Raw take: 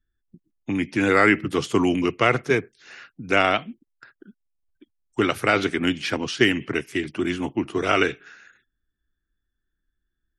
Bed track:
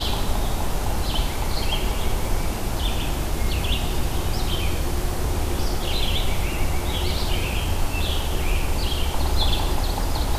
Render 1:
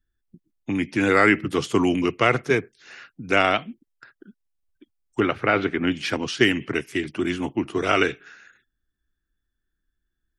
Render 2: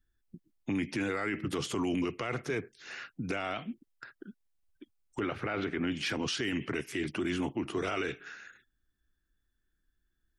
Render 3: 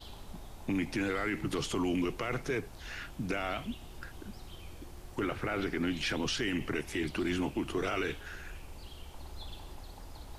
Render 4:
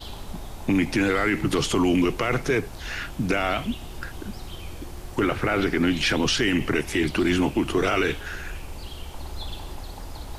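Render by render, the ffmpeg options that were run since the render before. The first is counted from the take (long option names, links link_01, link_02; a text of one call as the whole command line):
ffmpeg -i in.wav -filter_complex "[0:a]asettb=1/sr,asplit=3[link_01][link_02][link_03];[link_01]atrim=end=5.204[link_04];[link_02]atrim=start=5.2:end=5.92,asetpts=PTS-STARTPTS,afade=type=in:duration=0.004:curve=qsin,afade=type=out:start_time=0.716:duration=0.004:curve=qsin,lowpass=2500[link_05];[link_03]atrim=start=5.916[link_06];[link_04][link_05]acrossfade=duration=0.004:curve1=hsin:curve2=qsin[link_07];[link_07][link_06]acrossfade=duration=0.004:curve1=qsin:curve2=hsin" out.wav
ffmpeg -i in.wav -af "acompressor=threshold=-25dB:ratio=2.5,alimiter=limit=-24dB:level=0:latency=1:release=17" out.wav
ffmpeg -i in.wav -i bed.wav -filter_complex "[1:a]volume=-24dB[link_01];[0:a][link_01]amix=inputs=2:normalize=0" out.wav
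ffmpeg -i in.wav -af "volume=10.5dB" out.wav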